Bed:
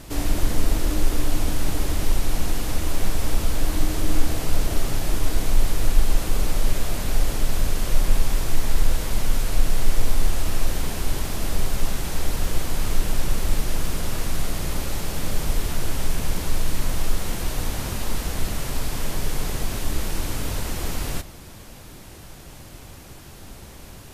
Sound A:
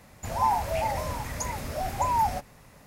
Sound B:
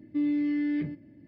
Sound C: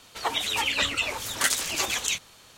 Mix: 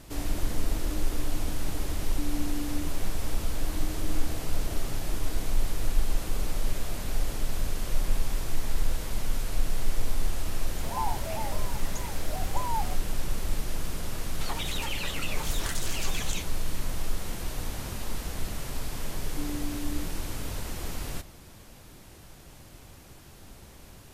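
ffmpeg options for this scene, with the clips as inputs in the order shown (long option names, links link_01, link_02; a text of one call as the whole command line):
ffmpeg -i bed.wav -i cue0.wav -i cue1.wav -i cue2.wav -filter_complex "[2:a]asplit=2[link_01][link_02];[0:a]volume=-7.5dB[link_03];[link_01]lowpass=1200[link_04];[3:a]acompressor=threshold=-30dB:ratio=6:attack=3.2:release=140:knee=1:detection=peak[link_05];[link_02]tiltshelf=frequency=650:gain=9[link_06];[link_04]atrim=end=1.27,asetpts=PTS-STARTPTS,volume=-9dB,afade=type=in:duration=0.004:curve=hsin,afade=type=out:start_time=1.266:duration=0.004:curve=hsin,adelay=2030[link_07];[1:a]atrim=end=2.86,asetpts=PTS-STARTPTS,volume=-8dB,afade=type=in:duration=0.004:curve=hsin,afade=type=out:start_time=2.856:duration=0.004:curve=hsin,adelay=10550[link_08];[link_05]atrim=end=2.57,asetpts=PTS-STARTPTS,volume=-2dB,afade=type=in:duration=0.004:curve=hsin,afade=type=out:start_time=2.566:duration=0.004:curve=hsin,adelay=14250[link_09];[link_06]atrim=end=1.27,asetpts=PTS-STARTPTS,volume=-16dB,afade=type=in:duration=0.004:curve=hsin,afade=type=out:start_time=1.266:duration=0.004:curve=hsin,adelay=19220[link_10];[link_03][link_07][link_08][link_09][link_10]amix=inputs=5:normalize=0" out.wav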